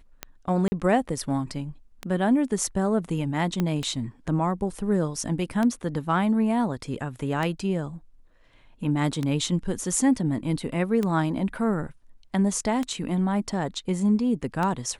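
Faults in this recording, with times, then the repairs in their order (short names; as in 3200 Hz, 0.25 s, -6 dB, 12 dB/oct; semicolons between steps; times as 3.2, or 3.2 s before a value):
tick 33 1/3 rpm -14 dBFS
0.68–0.72 gap 40 ms
3.6 pop -13 dBFS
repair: de-click; interpolate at 0.68, 40 ms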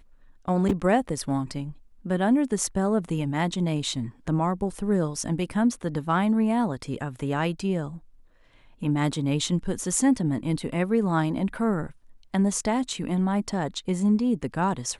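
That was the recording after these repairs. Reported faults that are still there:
3.6 pop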